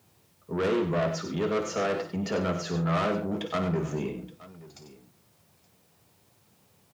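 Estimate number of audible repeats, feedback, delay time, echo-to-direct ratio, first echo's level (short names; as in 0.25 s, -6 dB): 4, no steady repeat, 54 ms, -6.5 dB, -11.5 dB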